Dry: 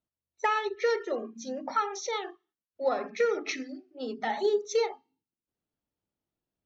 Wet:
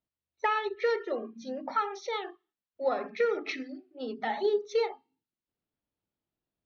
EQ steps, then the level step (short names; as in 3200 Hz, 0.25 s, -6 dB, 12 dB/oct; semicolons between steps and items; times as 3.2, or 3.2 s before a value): LPF 4500 Hz 24 dB/oct; -1.0 dB